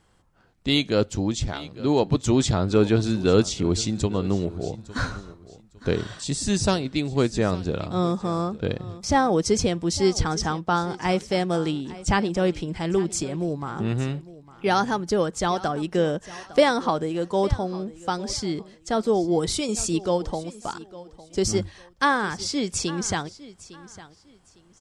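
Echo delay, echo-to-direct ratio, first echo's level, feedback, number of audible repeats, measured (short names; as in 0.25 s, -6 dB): 0.856 s, -17.5 dB, -18.0 dB, 26%, 2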